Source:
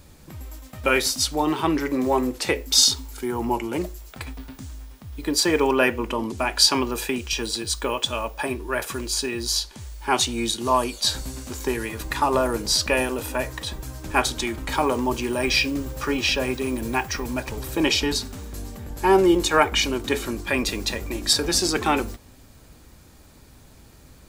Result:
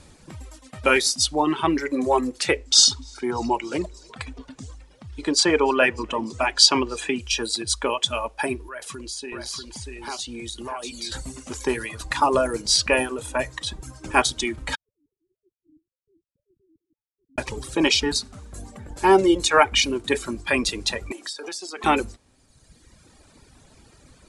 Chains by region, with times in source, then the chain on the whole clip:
0:02.57–0:07.20: low-pass filter 8,600 Hz 24 dB per octave + echo with shifted repeats 297 ms, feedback 56%, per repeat +45 Hz, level −20 dB
0:08.68–0:11.12: downward compressor 5 to 1, threshold −32 dBFS + single-tap delay 639 ms −4 dB
0:14.75–0:17.38: three sine waves on the formant tracks + inverse Chebyshev low-pass filter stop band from 710 Hz, stop band 80 dB
0:21.12–0:21.84: high-pass filter 370 Hz + downward compressor 12 to 1, threshold −31 dBFS
whole clip: Butterworth low-pass 11,000 Hz 96 dB per octave; reverb reduction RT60 1.4 s; low-shelf EQ 160 Hz −4.5 dB; level +2.5 dB

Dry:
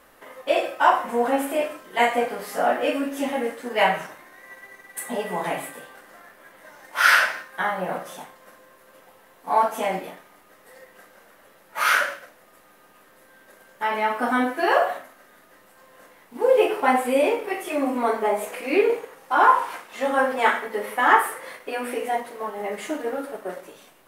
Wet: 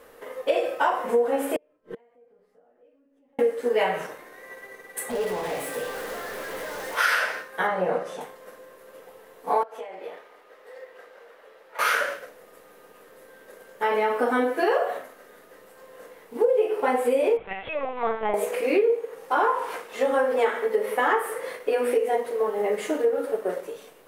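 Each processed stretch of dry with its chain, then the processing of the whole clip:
0:01.56–0:03.39: RIAA equalisation playback + downward compressor, threshold −28 dBFS + gate with flip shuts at −31 dBFS, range −35 dB
0:05.10–0:06.97: downward compressor 2 to 1, threshold −46 dBFS + power curve on the samples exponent 0.35
0:07.67–0:08.21: high-frequency loss of the air 57 metres + notch filter 3,300 Hz, Q 20
0:09.63–0:11.79: three-way crossover with the lows and the highs turned down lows −16 dB, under 370 Hz, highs −13 dB, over 4,900 Hz + downward compressor 12 to 1, threshold −38 dBFS
0:17.37–0:18.34: high-pass filter 820 Hz + linear-prediction vocoder at 8 kHz pitch kept
whole clip: parametric band 460 Hz +14.5 dB 0.38 octaves; downward compressor 6 to 1, threshold −19 dBFS

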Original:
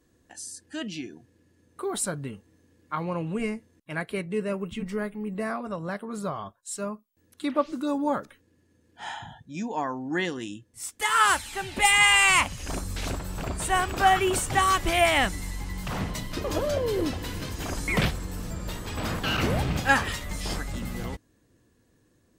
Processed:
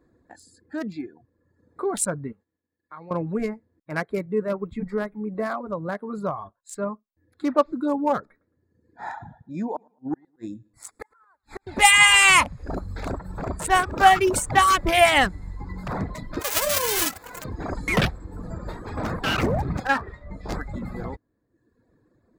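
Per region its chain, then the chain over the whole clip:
0:02.32–0:03.11: downward expander −54 dBFS + tilt shelving filter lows −5.5 dB, about 1,100 Hz + downward compressor 2 to 1, threshold −52 dBFS
0:08.19–0:11.67: gate with flip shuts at −22 dBFS, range −40 dB + Butterworth band-reject 3,000 Hz, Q 3.1 + repeating echo 110 ms, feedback 32%, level −17.5 dB
0:16.39–0:17.44: spectral envelope flattened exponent 0.1 + double-tracking delay 39 ms −13 dB
0:19.87–0:20.49: low-pass filter 2,100 Hz 6 dB per octave + tuned comb filter 65 Hz, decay 0.24 s
whole clip: adaptive Wiener filter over 15 samples; reverb reduction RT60 0.93 s; low-shelf EQ 230 Hz −4.5 dB; level +6.5 dB

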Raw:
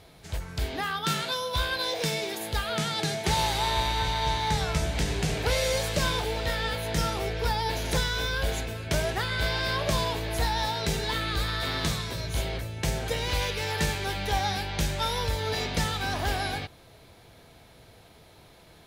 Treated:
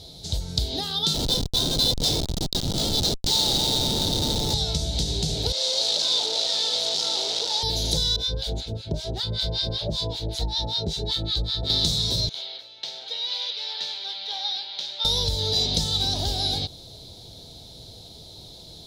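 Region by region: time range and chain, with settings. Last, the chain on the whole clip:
0:01.14–0:04.54: high-pass filter 1,100 Hz + high-shelf EQ 2,400 Hz +7.5 dB + comparator with hysteresis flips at −24 dBFS
0:05.52–0:07.63: sign of each sample alone + band-pass filter 540–5,200 Hz
0:08.16–0:11.70: low-pass filter 2,600 Hz 6 dB per octave + two-band tremolo in antiphase 5.2 Hz, depth 100%, crossover 960 Hz + notch filter 1,200 Hz, Q 19
0:12.29–0:15.05: high-pass filter 1,400 Hz + high-frequency loss of the air 320 metres
whole clip: notch filter 1,100 Hz, Q 5; downward compressor, threshold −31 dBFS; drawn EQ curve 120 Hz 0 dB, 600 Hz −4 dB, 970 Hz −8 dB, 1,700 Hz −20 dB, 2,600 Hz −13 dB, 3,800 Hz +11 dB, 12,000 Hz −4 dB; level +8.5 dB

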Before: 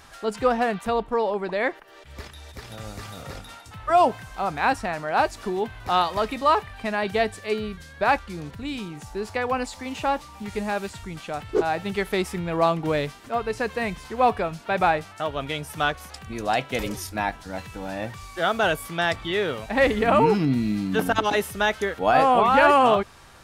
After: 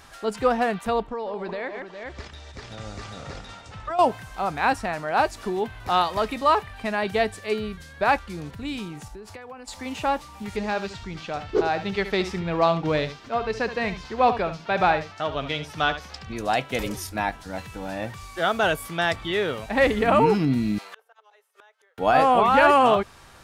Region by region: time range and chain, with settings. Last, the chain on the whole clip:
0:01.07–0:03.99: low-pass filter 7,400 Hz 24 dB per octave + multi-tap delay 141/408 ms −13/−13 dB + downward compressor 5 to 1, threshold −27 dBFS
0:09.08–0:09.68: downward compressor 16 to 1, threshold −36 dBFS + multiband upward and downward expander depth 70%
0:10.56–0:16.37: high shelf with overshoot 7,400 Hz −13 dB, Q 1.5 + floating-point word with a short mantissa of 8 bits + single-tap delay 71 ms −11.5 dB
0:20.78–0:21.98: elliptic high-pass filter 440 Hz + gate with flip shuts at −28 dBFS, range −36 dB + parametric band 1,200 Hz +4 dB 1.7 octaves
whole clip: no processing

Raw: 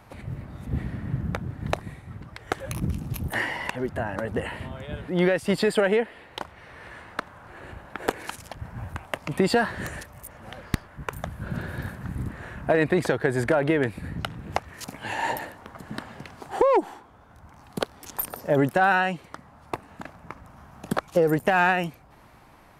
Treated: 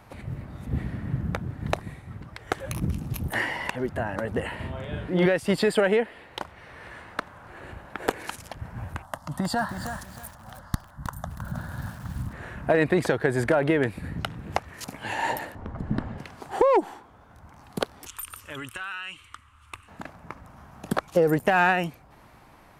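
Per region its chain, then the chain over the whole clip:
0:04.55–0:05.26: high-shelf EQ 6,100 Hz −6 dB + double-tracking delay 38 ms −2.5 dB
0:09.02–0:12.33: phaser with its sweep stopped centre 1,000 Hz, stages 4 + feedback echo at a low word length 316 ms, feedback 35%, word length 7 bits, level −8 dB
0:15.55–0:16.18: low-pass filter 9,800 Hz + spectral tilt −4 dB per octave
0:18.07–0:19.88: drawn EQ curve 100 Hz 0 dB, 160 Hz −24 dB, 270 Hz −15 dB, 730 Hz −24 dB, 1,200 Hz +1 dB, 1,800 Hz −5 dB, 2,900 Hz +8 dB, 4,700 Hz −6 dB, 8,600 Hz +5 dB, 15,000 Hz −8 dB + downward compressor, threshold −31 dBFS
whole clip: no processing

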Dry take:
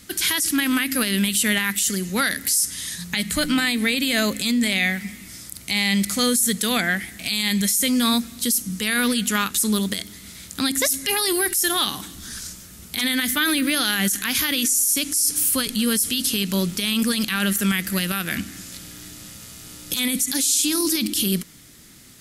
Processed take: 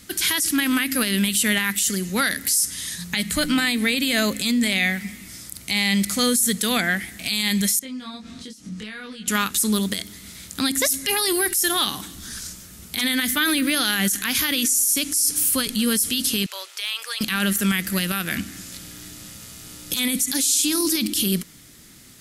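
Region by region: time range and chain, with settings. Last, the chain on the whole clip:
0:07.79–0:09.28: downward compressor 16 to 1, threshold −31 dBFS + high-frequency loss of the air 110 metres + double-tracking delay 23 ms −2 dB
0:16.46–0:17.21: Bessel high-pass filter 960 Hz, order 8 + high-shelf EQ 6,500 Hz −11.5 dB + hard clipping −15 dBFS
whole clip: no processing

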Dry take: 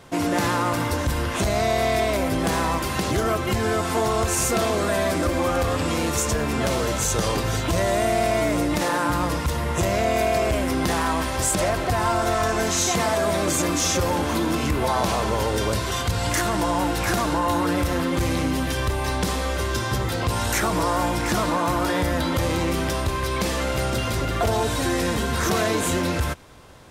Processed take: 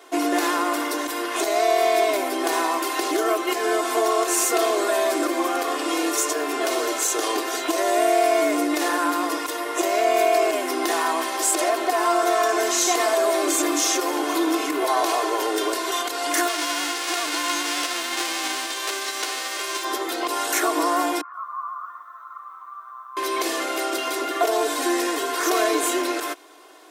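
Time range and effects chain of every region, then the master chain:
0:16.47–0:19.83: spectral envelope flattened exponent 0.1 + high-frequency loss of the air 77 metres
0:21.21–0:23.17: flat-topped band-pass 1,200 Hz, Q 6.1 + feedback echo at a low word length 123 ms, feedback 55%, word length 10 bits, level −13 dB
whole clip: elliptic high-pass filter 300 Hz, stop band 40 dB; high-shelf EQ 11,000 Hz +5.5 dB; comb filter 2.8 ms, depth 61%

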